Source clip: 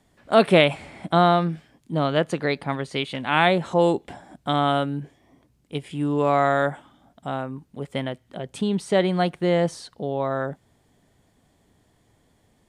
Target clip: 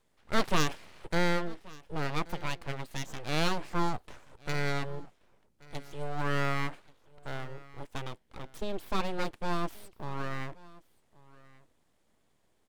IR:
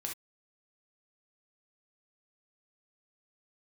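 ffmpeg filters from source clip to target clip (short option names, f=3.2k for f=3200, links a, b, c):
-af "aeval=exprs='abs(val(0))':c=same,aecho=1:1:1130:0.0794,volume=-8dB"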